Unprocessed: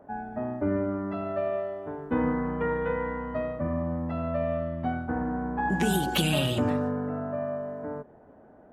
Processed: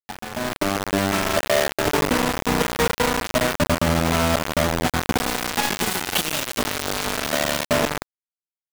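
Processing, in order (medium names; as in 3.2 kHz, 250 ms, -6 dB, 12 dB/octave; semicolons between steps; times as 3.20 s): companded quantiser 4-bit; compression 16:1, threshold -36 dBFS, peak gain reduction 16.5 dB; 5.18–7.65 s: high-pass 200 Hz 12 dB/octave; bit crusher 6-bit; level rider gain up to 13 dB; trim +4.5 dB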